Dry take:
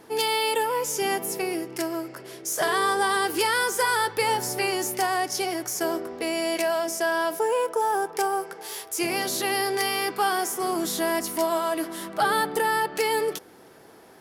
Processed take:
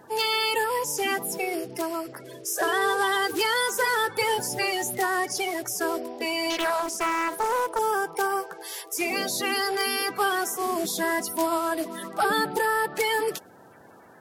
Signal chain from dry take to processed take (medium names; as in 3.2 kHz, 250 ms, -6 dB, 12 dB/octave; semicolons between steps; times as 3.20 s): coarse spectral quantiser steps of 30 dB; 6.50–7.79 s: loudspeaker Doppler distortion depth 0.36 ms